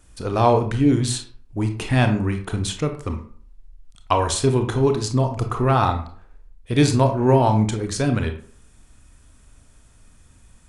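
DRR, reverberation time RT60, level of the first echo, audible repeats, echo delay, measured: 5.5 dB, 0.50 s, none, none, none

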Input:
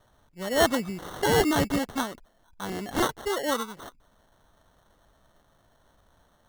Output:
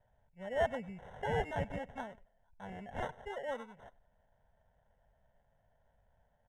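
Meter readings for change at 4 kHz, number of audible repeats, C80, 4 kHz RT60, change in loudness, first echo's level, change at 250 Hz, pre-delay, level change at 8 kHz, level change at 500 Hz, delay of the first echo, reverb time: -21.0 dB, 1, none, none, -12.5 dB, -22.0 dB, -18.0 dB, none, -29.0 dB, -10.5 dB, 99 ms, none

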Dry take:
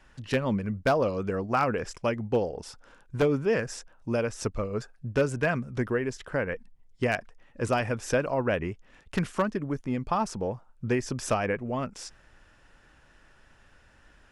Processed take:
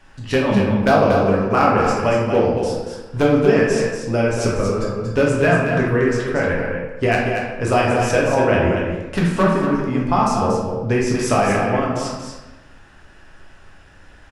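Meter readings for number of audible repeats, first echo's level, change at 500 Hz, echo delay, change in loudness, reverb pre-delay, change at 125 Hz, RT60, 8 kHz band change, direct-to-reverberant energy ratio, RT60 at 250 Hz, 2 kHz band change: 1, -6.5 dB, +11.0 dB, 0.234 s, +11.0 dB, 7 ms, +11.0 dB, 1.1 s, +9.0 dB, -5.0 dB, 1.2 s, +11.0 dB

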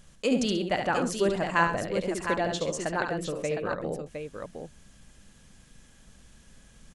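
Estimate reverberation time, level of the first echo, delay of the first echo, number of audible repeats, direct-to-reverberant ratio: none, -6.0 dB, 71 ms, 3, none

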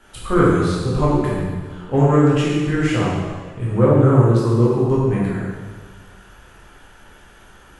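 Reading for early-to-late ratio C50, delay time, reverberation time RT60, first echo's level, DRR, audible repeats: -1.5 dB, none, 1.5 s, none, -7.0 dB, none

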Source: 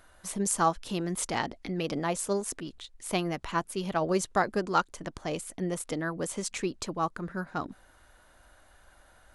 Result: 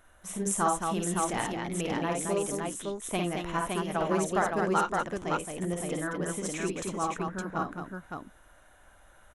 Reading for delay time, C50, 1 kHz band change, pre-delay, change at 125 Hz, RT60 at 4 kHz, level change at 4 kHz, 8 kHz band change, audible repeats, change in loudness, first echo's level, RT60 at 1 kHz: 52 ms, none, +1.0 dB, none, +1.0 dB, none, -2.0 dB, +0.5 dB, 4, +0.5 dB, -4.5 dB, none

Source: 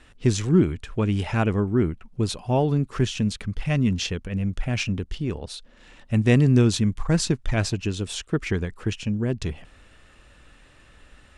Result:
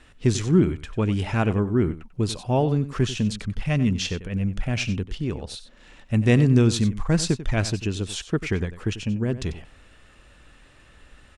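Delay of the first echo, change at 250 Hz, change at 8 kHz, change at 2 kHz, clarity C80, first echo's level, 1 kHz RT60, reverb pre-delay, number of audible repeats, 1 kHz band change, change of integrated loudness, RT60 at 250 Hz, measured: 93 ms, 0.0 dB, 0.0 dB, 0.0 dB, none, -14.0 dB, none, none, 1, 0.0 dB, 0.0 dB, none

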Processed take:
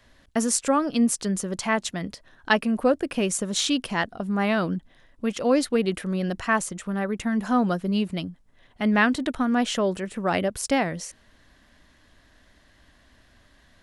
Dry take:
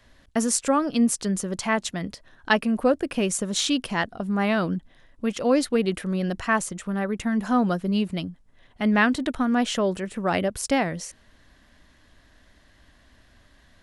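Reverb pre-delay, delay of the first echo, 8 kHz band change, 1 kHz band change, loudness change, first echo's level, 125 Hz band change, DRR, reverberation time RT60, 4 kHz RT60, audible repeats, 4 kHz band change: none, none, 0.0 dB, 0.0 dB, -0.5 dB, none, -0.5 dB, none, none, none, none, 0.0 dB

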